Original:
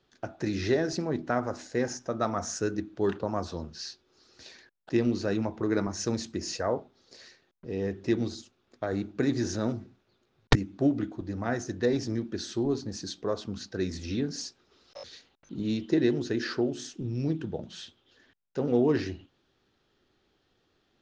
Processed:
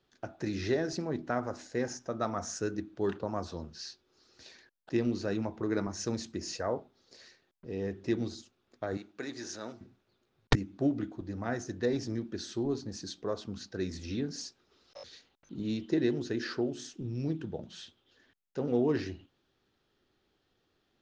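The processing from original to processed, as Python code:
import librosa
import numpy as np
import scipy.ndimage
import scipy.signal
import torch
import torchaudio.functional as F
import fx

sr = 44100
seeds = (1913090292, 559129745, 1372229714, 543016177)

y = fx.highpass(x, sr, hz=920.0, slope=6, at=(8.97, 9.81))
y = F.gain(torch.from_numpy(y), -4.0).numpy()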